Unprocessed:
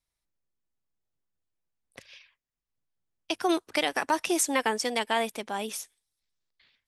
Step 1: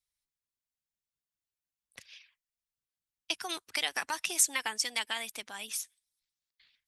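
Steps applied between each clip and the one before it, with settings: passive tone stack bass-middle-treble 5-5-5; harmonic-percussive split percussive +8 dB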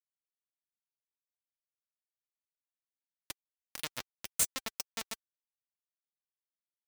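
bell 4100 Hz -5 dB 2.9 oct; bit-crush 4-bit; notch comb 390 Hz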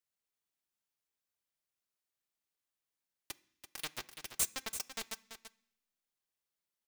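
overloaded stage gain 29 dB; echo 0.336 s -10 dB; on a send at -14 dB: reverb RT60 0.65 s, pre-delay 3 ms; on the sum: gain +4 dB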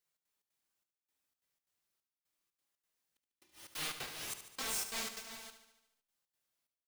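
phase scrambler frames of 0.2 s; step gate "xx.xx.xxxx...x" 180 bpm -60 dB; on a send: feedback echo 73 ms, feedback 60%, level -10.5 dB; on the sum: gain +4 dB

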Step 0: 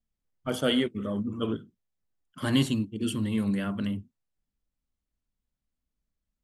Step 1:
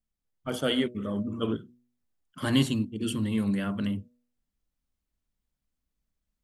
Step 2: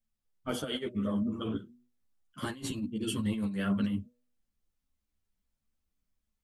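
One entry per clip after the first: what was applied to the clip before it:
de-hum 121.6 Hz, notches 5; vocal rider 2 s
negative-ratio compressor -29 dBFS, ratio -0.5; ensemble effect

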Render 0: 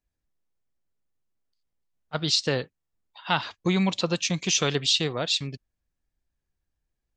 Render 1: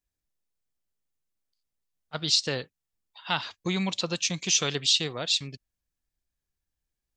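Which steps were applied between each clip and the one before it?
high shelf 2700 Hz +8 dB; gain -5.5 dB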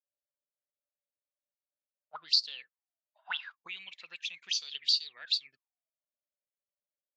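auto-wah 580–4600 Hz, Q 20, up, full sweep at -21.5 dBFS; gain +7 dB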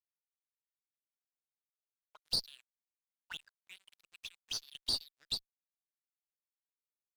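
high shelf 3700 Hz +7.5 dB; crossover distortion -40 dBFS; tube stage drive 16 dB, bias 0.55; gain -7.5 dB

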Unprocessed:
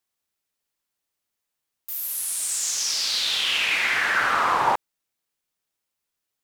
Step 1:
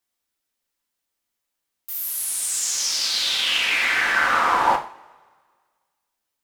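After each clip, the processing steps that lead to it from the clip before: two-slope reverb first 0.39 s, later 1.7 s, from -22 dB, DRR 2.5 dB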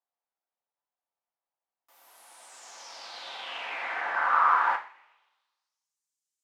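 band-pass sweep 780 Hz -> 7100 Hz, 4.11–5.98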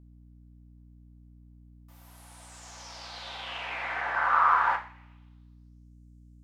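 hum 60 Hz, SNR 20 dB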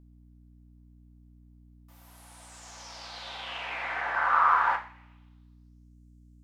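bell 96 Hz -4.5 dB 1.1 oct

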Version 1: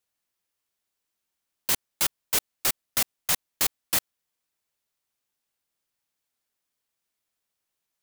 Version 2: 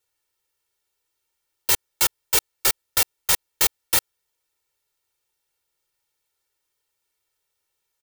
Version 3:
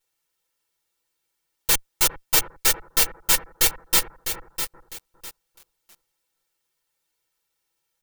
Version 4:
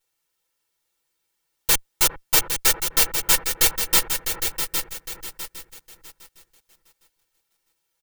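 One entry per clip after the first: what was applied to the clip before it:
comb 2.2 ms, depth 88%; gain +2.5 dB
minimum comb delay 6 ms; analogue delay 0.404 s, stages 4096, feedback 32%, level -12 dB; lo-fi delay 0.653 s, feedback 35%, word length 6-bit, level -8 dB; gain +2 dB
feedback echo 0.809 s, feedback 20%, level -7.5 dB; gain +1 dB

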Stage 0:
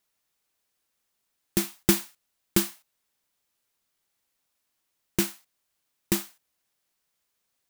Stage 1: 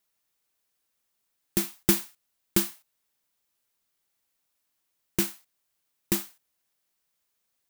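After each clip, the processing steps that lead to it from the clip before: high shelf 12000 Hz +4.5 dB; gain -2 dB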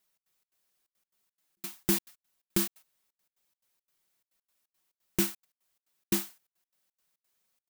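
comb 5.4 ms, depth 42%; limiter -12.5 dBFS, peak gain reduction 8 dB; step gate "xx.xx.xxxx.x." 174 bpm -60 dB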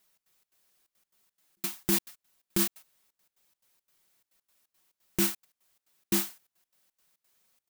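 limiter -20.5 dBFS, peak gain reduction 8 dB; gain +6.5 dB

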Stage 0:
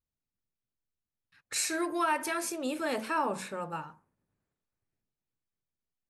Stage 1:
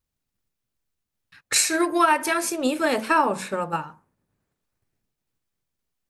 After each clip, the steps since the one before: transient shaper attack +6 dB, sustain -2 dB; gain +8.5 dB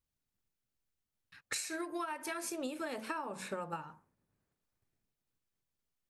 compressor 16:1, threshold -29 dBFS, peak gain reduction 16.5 dB; gain -6.5 dB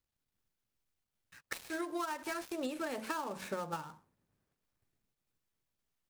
switching dead time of 0.092 ms; gain +1.5 dB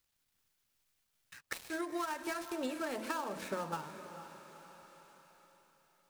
on a send: diffused feedback echo 0.474 s, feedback 42%, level -11 dB; on the sum: mismatched tape noise reduction encoder only

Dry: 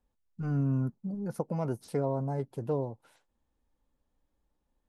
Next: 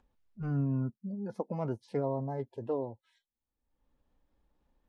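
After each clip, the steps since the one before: LPF 4000 Hz 12 dB/oct; spectral noise reduction 28 dB; upward compressor, threshold -44 dBFS; gain -1.5 dB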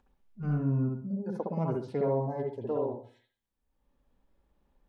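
reverb, pre-delay 61 ms, DRR -0.5 dB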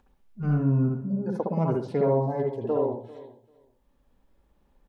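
feedback echo 0.393 s, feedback 15%, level -19 dB; gain +5.5 dB

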